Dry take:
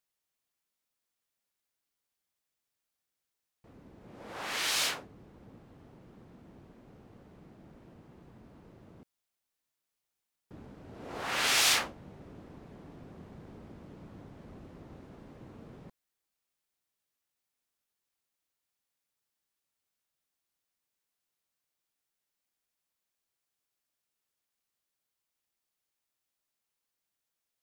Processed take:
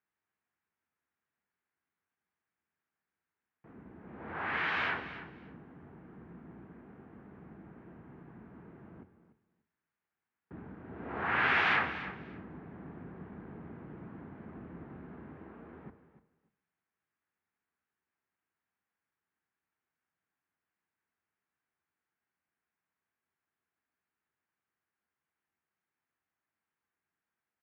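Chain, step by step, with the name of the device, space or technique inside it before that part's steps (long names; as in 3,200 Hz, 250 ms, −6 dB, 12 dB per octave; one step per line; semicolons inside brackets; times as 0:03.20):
0:15.37–0:15.84: high-pass filter 260 Hz 12 dB per octave
repeating echo 293 ms, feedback 17%, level −14 dB
reverb whose tail is shaped and stops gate 390 ms falling, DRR 11.5 dB
sub-octave bass pedal (sub-octave generator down 2 octaves, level +2 dB; loudspeaker in its box 89–2,200 Hz, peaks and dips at 110 Hz −8 dB, 560 Hz −8 dB, 1,600 Hz +4 dB)
level +3 dB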